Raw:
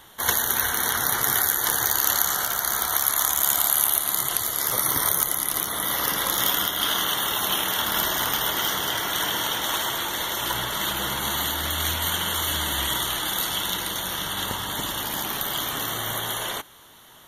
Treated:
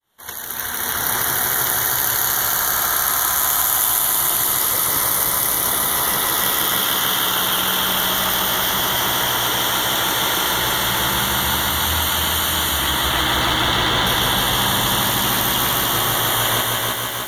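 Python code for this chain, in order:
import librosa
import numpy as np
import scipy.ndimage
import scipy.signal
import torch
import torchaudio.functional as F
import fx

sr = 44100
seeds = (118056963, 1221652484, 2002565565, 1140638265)

p1 = fx.fade_in_head(x, sr, length_s=2.74)
p2 = fx.lowpass(p1, sr, hz=3500.0, slope=12, at=(12.78, 14.07))
p3 = fx.over_compress(p2, sr, threshold_db=-31.0, ratio=-0.5)
p4 = p2 + F.gain(torch.from_numpy(p3), 2.0).numpy()
p5 = fx.echo_feedback(p4, sr, ms=316, feedback_pct=57, wet_db=-4)
p6 = fx.echo_crushed(p5, sr, ms=150, feedback_pct=80, bits=6, wet_db=-4.5)
y = F.gain(torch.from_numpy(p6), -1.0).numpy()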